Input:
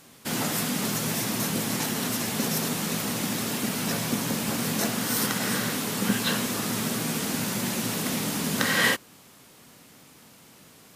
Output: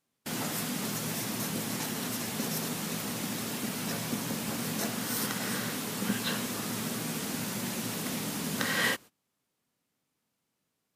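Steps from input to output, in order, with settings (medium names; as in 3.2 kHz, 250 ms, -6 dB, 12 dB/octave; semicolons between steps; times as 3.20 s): gate -39 dBFS, range -23 dB; trim -6 dB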